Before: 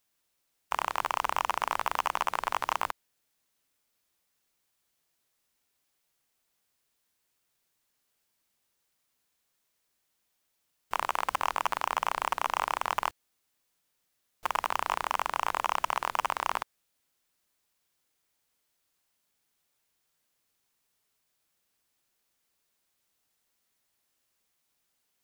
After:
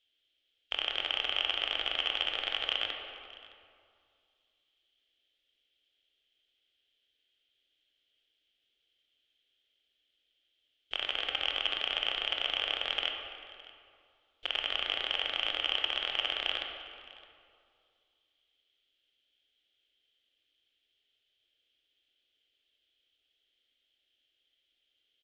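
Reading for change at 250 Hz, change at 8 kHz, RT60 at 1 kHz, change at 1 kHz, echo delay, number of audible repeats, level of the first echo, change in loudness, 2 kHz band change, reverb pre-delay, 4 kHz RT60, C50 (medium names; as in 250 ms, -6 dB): -3.5 dB, under -15 dB, 2.3 s, -15.0 dB, 614 ms, 1, -21.5 dB, -0.5 dB, 0.0 dB, 20 ms, 1.7 s, 3.5 dB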